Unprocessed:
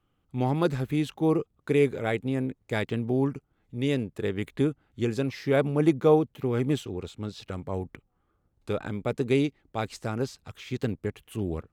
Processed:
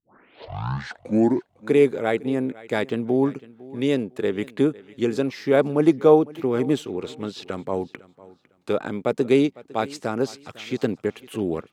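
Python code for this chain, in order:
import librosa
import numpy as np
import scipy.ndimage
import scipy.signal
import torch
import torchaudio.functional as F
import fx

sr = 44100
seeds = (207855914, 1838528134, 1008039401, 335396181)

p1 = fx.tape_start_head(x, sr, length_s=1.7)
p2 = fx.high_shelf(p1, sr, hz=8100.0, db=-7.5)
p3 = p2 + fx.echo_feedback(p2, sr, ms=504, feedback_pct=26, wet_db=-21, dry=0)
p4 = fx.dynamic_eq(p3, sr, hz=2400.0, q=1.0, threshold_db=-44.0, ratio=4.0, max_db=-4)
p5 = scipy.signal.sosfilt(scipy.signal.butter(2, 220.0, 'highpass', fs=sr, output='sos'), p4)
p6 = fx.rider(p5, sr, range_db=3, speed_s=2.0)
p7 = p5 + F.gain(torch.from_numpy(p6), -1.0).numpy()
y = F.gain(torch.from_numpy(p7), 1.0).numpy()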